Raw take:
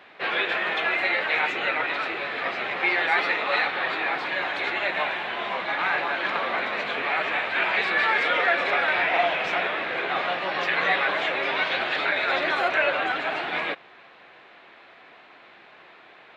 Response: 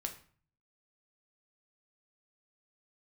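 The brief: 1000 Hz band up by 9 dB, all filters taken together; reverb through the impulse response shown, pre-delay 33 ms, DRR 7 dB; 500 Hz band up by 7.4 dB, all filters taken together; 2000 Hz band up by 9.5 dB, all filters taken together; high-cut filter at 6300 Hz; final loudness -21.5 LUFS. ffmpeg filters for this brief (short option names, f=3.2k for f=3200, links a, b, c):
-filter_complex "[0:a]lowpass=6.3k,equalizer=f=500:t=o:g=6,equalizer=f=1k:t=o:g=7.5,equalizer=f=2k:t=o:g=9,asplit=2[a][b];[1:a]atrim=start_sample=2205,adelay=33[c];[b][c]afir=irnorm=-1:irlink=0,volume=-6.5dB[d];[a][d]amix=inputs=2:normalize=0,volume=-7.5dB"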